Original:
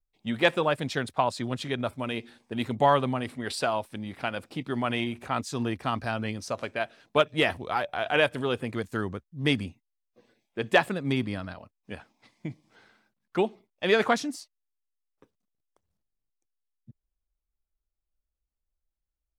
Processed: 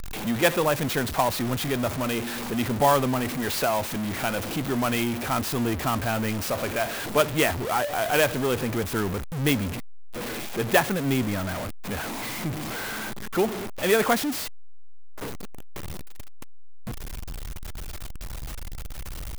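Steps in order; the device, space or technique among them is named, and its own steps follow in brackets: early CD player with a faulty converter (jump at every zero crossing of -26 dBFS; sampling jitter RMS 0.038 ms)

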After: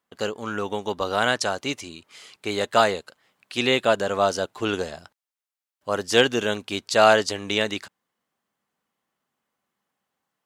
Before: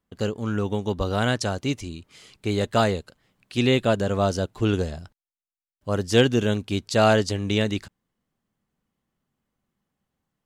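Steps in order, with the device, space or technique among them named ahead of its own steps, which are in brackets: filter by subtraction (in parallel: low-pass 950 Hz 12 dB/octave + polarity flip); on the sum: trim +3 dB

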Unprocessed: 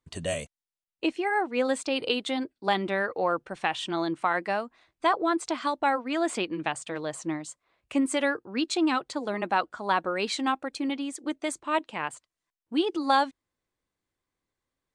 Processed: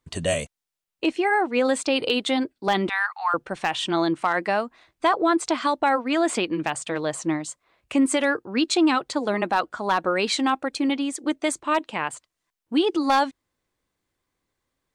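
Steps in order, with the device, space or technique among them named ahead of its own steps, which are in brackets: 2.89–3.34 s: steep high-pass 800 Hz 72 dB/octave; clipper into limiter (hard clipper -15 dBFS, distortion -24 dB; peak limiter -18.5 dBFS, peak gain reduction 3.5 dB); trim +6.5 dB

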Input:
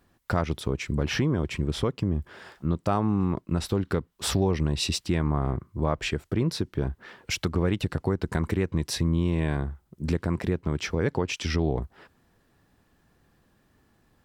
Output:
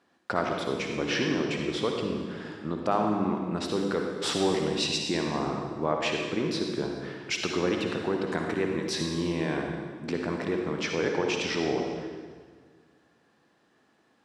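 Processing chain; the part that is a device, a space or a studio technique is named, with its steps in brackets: supermarket ceiling speaker (band-pass 280–6400 Hz; reverberation RT60 1.6 s, pre-delay 49 ms, DRR 1.5 dB); 4.89–5.43 s: band-stop 1.3 kHz, Q 6.3

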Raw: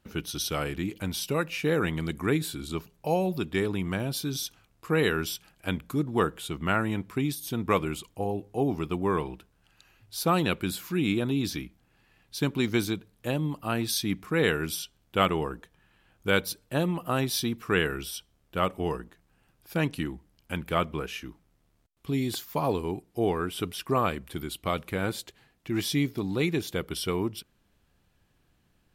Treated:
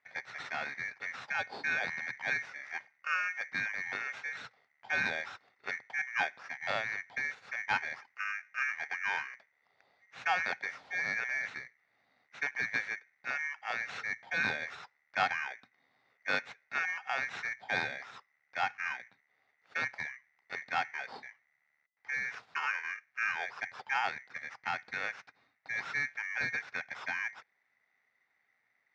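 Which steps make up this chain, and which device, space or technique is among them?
ring modulator pedal into a guitar cabinet (polarity switched at an audio rate 2 kHz; cabinet simulation 110–3900 Hz, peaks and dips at 120 Hz +6 dB, 330 Hz -9 dB, 780 Hz +8 dB, 1.4 kHz +5 dB, 3.1 kHz -9 dB); trim -7.5 dB

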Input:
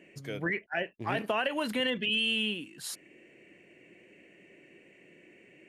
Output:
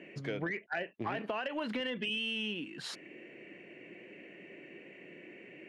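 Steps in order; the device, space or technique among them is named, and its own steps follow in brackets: AM radio (band-pass 140–3400 Hz; compression 8:1, threshold -38 dBFS, peak gain reduction 12.5 dB; saturation -30 dBFS, distortion -23 dB); trim +6 dB

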